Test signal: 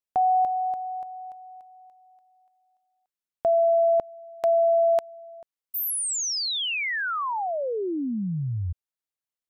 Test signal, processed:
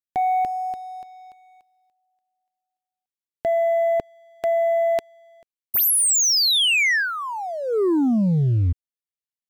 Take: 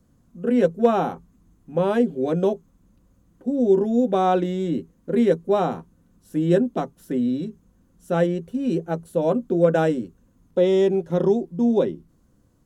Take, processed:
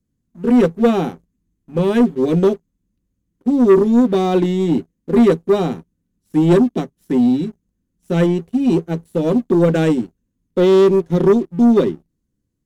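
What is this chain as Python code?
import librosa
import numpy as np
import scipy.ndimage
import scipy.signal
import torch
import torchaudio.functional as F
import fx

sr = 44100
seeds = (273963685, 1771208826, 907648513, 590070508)

y = fx.band_shelf(x, sr, hz=870.0, db=-9.5, octaves=1.7)
y = fx.leveller(y, sr, passes=2)
y = fx.upward_expand(y, sr, threshold_db=-37.0, expansion=1.5)
y = F.gain(torch.from_numpy(y), 4.5).numpy()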